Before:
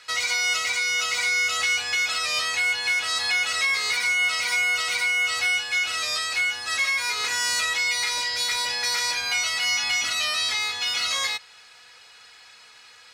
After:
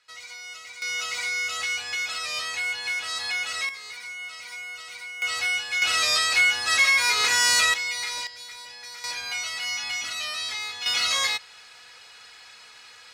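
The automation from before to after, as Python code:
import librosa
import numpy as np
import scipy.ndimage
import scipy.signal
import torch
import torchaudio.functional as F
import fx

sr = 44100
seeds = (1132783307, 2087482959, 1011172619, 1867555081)

y = fx.gain(x, sr, db=fx.steps((0.0, -16.5), (0.82, -5.0), (3.69, -14.5), (5.22, -2.5), (5.82, 4.5), (7.74, -5.0), (8.27, -15.5), (9.04, -6.0), (10.86, 1.5)))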